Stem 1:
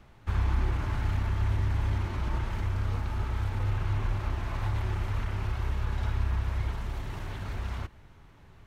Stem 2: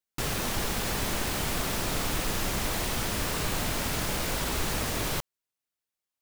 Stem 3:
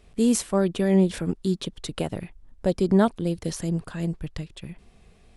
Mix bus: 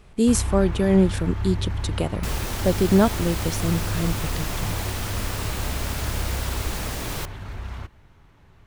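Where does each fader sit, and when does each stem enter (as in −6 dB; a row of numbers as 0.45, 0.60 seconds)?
+0.5, −1.0, +2.0 decibels; 0.00, 2.05, 0.00 seconds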